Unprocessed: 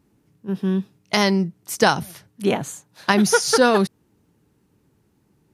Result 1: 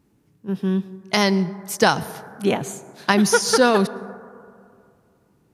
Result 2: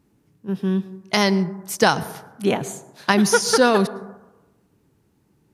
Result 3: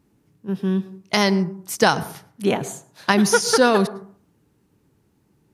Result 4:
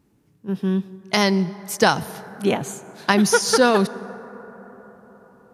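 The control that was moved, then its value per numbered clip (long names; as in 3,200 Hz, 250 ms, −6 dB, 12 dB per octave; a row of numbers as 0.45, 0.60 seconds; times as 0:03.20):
dense smooth reverb, RT60: 2.4, 1.1, 0.52, 5 seconds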